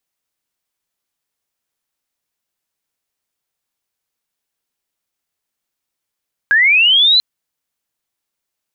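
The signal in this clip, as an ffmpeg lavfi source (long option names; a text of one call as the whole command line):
ffmpeg -f lavfi -i "aevalsrc='pow(10,(-8+0.5*t/0.69)/20)*sin(2*PI*(1600*t+2500*t*t/(2*0.69)))':duration=0.69:sample_rate=44100" out.wav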